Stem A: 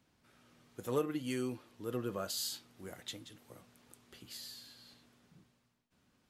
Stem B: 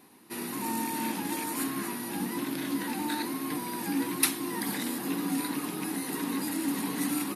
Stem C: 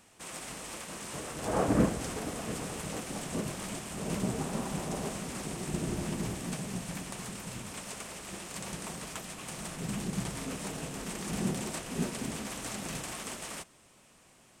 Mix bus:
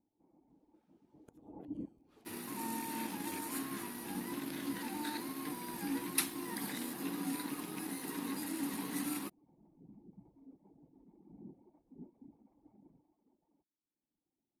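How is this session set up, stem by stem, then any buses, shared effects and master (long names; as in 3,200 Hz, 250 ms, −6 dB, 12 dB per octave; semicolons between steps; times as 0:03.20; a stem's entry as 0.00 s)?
−5.0 dB, 0.50 s, no send, noise gate −59 dBFS, range −16 dB; downward compressor 4 to 1, threshold −44 dBFS, peak gain reduction 14 dB; gate with flip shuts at −38 dBFS, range −26 dB
−7.0 dB, 1.95 s, no send, dead-zone distortion −47.5 dBFS
0:12.85 −10.5 dB → 0:13.10 −17.5 dB, 0.00 s, no send, reverb reduction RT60 1.6 s; upward compression, threshold −54 dBFS; formant resonators in series u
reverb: not used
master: no processing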